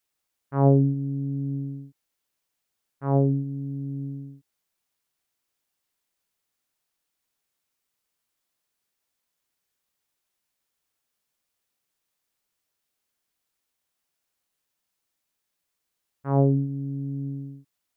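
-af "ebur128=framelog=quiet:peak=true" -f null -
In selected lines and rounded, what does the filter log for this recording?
Integrated loudness:
  I:         -25.8 LUFS
  Threshold: -36.7 LUFS
Loudness range:
  LRA:        14.4 LU
  Threshold: -50.3 LUFS
  LRA low:   -40.6 LUFS
  LRA high:  -26.2 LUFS
True peak:
  Peak:       -7.0 dBFS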